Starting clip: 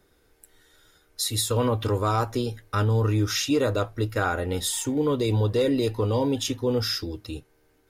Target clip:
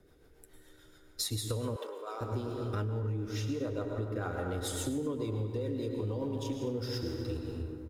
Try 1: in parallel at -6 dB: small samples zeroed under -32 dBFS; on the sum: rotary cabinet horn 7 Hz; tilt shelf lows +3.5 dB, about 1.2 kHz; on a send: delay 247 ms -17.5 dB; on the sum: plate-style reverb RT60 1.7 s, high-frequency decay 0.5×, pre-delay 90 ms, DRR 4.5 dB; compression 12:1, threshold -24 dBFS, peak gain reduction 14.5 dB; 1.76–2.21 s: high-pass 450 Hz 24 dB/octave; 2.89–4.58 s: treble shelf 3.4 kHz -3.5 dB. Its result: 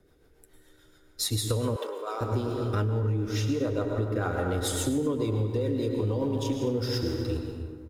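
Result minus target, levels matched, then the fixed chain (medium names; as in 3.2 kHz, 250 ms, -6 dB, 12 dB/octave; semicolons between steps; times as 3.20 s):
compression: peak gain reduction -7 dB
in parallel at -6 dB: small samples zeroed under -32 dBFS; on the sum: rotary cabinet horn 7 Hz; tilt shelf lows +3.5 dB, about 1.2 kHz; on a send: delay 247 ms -17.5 dB; on the sum: plate-style reverb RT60 1.7 s, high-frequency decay 0.5×, pre-delay 90 ms, DRR 4.5 dB; compression 12:1, threshold -31.5 dBFS, peak gain reduction 21.5 dB; 1.76–2.21 s: high-pass 450 Hz 24 dB/octave; 2.89–4.58 s: treble shelf 3.4 kHz -3.5 dB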